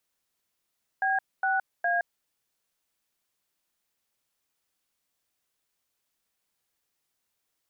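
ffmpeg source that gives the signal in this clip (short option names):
-f lavfi -i "aevalsrc='0.0531*clip(min(mod(t,0.411),0.168-mod(t,0.411))/0.002,0,1)*(eq(floor(t/0.411),0)*(sin(2*PI*770*mod(t,0.411))+sin(2*PI*1633*mod(t,0.411)))+eq(floor(t/0.411),1)*(sin(2*PI*770*mod(t,0.411))+sin(2*PI*1477*mod(t,0.411)))+eq(floor(t/0.411),2)*(sin(2*PI*697*mod(t,0.411))+sin(2*PI*1633*mod(t,0.411))))':d=1.233:s=44100"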